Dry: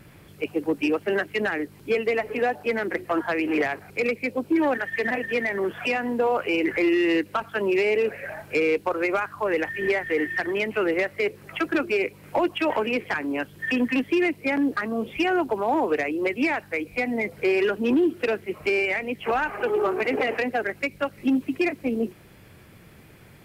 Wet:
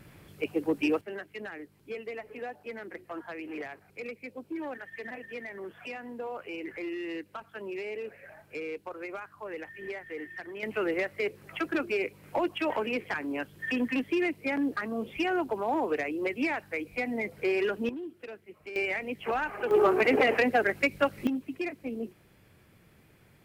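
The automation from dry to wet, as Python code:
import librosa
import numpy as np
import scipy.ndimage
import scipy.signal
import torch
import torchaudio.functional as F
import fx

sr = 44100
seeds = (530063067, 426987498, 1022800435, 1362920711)

y = fx.gain(x, sr, db=fx.steps((0.0, -3.5), (1.01, -15.0), (10.63, -6.0), (17.89, -18.5), (18.76, -6.0), (19.71, 1.0), (21.27, -10.0)))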